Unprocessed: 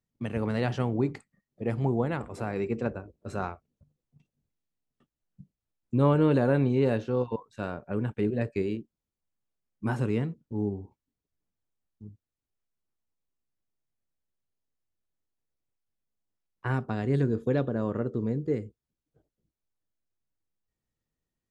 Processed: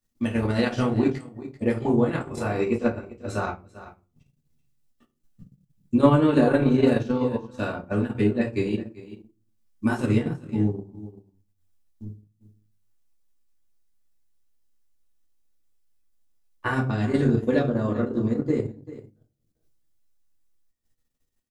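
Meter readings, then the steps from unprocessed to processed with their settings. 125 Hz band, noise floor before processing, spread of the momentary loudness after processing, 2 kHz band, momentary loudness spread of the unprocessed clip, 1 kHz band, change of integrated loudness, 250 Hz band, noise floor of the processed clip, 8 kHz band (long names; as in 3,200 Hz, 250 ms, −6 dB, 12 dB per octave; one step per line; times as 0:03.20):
+2.5 dB, below −85 dBFS, 20 LU, +6.5 dB, 12 LU, +5.0 dB, +5.0 dB, +6.5 dB, −74 dBFS, can't be measured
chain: high-shelf EQ 3,100 Hz +9.5 dB
single-tap delay 389 ms −14.5 dB
rectangular room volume 190 cubic metres, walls furnished, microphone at 2.5 metres
transient designer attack +5 dB, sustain −8 dB
level −2 dB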